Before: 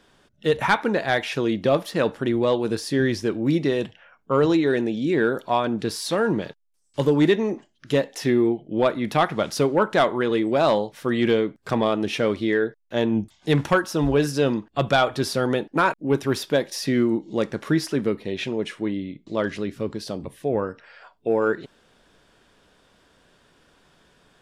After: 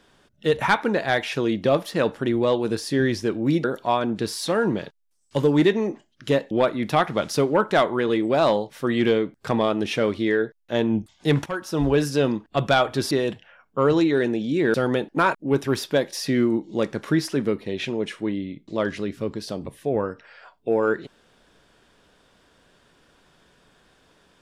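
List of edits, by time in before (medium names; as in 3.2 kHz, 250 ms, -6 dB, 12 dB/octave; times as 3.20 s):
3.64–5.27 s: move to 15.33 s
8.14–8.73 s: delete
13.68–14.05 s: fade in, from -16 dB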